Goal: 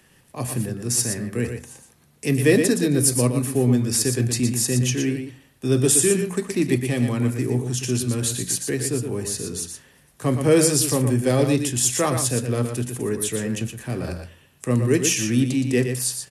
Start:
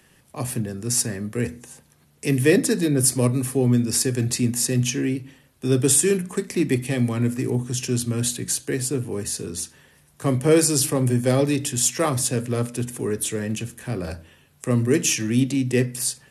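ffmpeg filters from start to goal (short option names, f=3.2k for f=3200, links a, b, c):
-af "aecho=1:1:118:0.447"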